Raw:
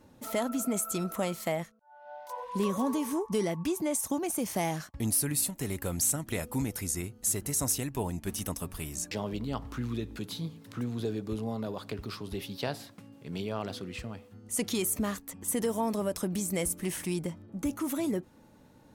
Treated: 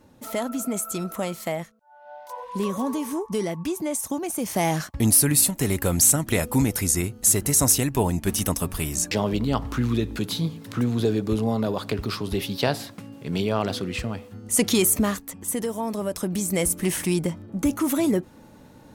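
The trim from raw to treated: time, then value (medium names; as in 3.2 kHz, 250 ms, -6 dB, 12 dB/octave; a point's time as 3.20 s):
4.34 s +3 dB
4.81 s +10.5 dB
14.87 s +10.5 dB
15.75 s +1 dB
16.81 s +9 dB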